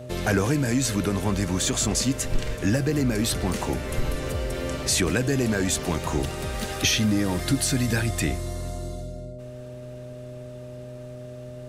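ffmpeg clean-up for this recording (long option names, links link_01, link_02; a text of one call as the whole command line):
ffmpeg -i in.wav -af "bandreject=frequency=125.8:width_type=h:width=4,bandreject=frequency=251.6:width_type=h:width=4,bandreject=frequency=377.4:width_type=h:width=4,bandreject=frequency=503.2:width_type=h:width=4,bandreject=frequency=610:width=30" out.wav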